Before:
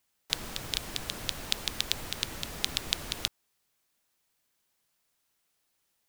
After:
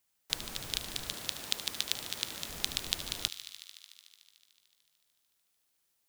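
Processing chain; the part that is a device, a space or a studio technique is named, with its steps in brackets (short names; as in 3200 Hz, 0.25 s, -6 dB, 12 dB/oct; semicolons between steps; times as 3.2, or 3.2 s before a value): 1.14–2.49 HPF 180 Hz 6 dB/oct; saturated reverb return (on a send at -14 dB: reverb RT60 0.85 s, pre-delay 61 ms + soft clip -39 dBFS, distortion -7 dB); on the sum: high shelf 5100 Hz +4.5 dB; thin delay 74 ms, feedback 84%, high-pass 1600 Hz, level -13 dB; gain -4.5 dB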